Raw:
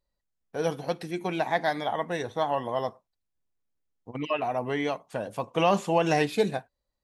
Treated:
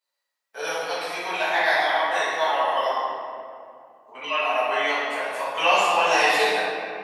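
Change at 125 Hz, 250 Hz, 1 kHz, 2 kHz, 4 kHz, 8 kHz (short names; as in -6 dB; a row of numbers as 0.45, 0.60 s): under -15 dB, -8.0 dB, +7.5 dB, +12.0 dB, +11.5 dB, +9.0 dB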